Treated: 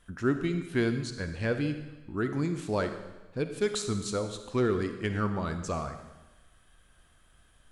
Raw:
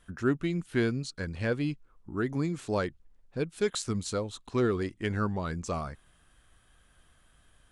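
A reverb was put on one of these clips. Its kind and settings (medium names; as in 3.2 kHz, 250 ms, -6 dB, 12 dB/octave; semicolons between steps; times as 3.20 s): algorithmic reverb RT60 1.1 s, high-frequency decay 1×, pre-delay 10 ms, DRR 7.5 dB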